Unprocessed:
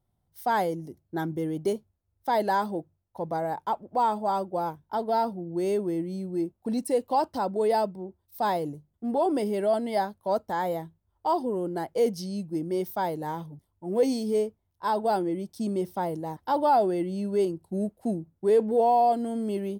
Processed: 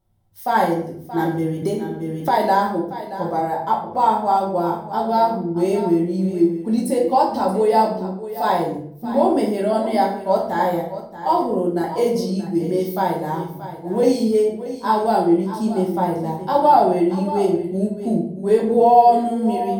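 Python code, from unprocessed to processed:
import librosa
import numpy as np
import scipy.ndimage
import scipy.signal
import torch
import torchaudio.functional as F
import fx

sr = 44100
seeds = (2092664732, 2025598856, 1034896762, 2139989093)

p1 = x + fx.echo_single(x, sr, ms=628, db=-13.0, dry=0)
p2 = fx.room_shoebox(p1, sr, seeds[0], volume_m3=110.0, walls='mixed', distance_m=1.1)
p3 = fx.band_squash(p2, sr, depth_pct=100, at=(1.62, 2.29))
y = p3 * librosa.db_to_amplitude(3.0)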